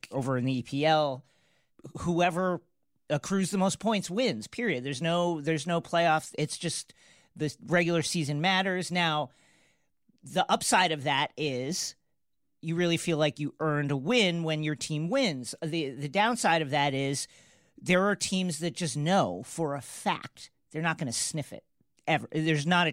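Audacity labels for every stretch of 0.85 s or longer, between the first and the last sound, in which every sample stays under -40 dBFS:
9.260000	10.270000	silence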